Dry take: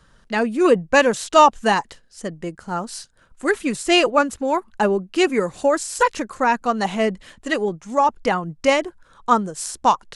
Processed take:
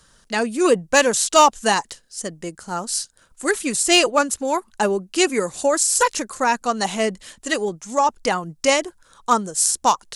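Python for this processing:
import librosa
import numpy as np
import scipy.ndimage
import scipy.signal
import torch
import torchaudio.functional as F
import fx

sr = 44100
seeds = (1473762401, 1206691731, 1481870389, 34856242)

p1 = fx.clip_asym(x, sr, top_db=-8.0, bottom_db=-5.5)
p2 = x + (p1 * 10.0 ** (-4.5 / 20.0))
p3 = fx.bass_treble(p2, sr, bass_db=-3, treble_db=13)
y = p3 * 10.0 ** (-5.0 / 20.0)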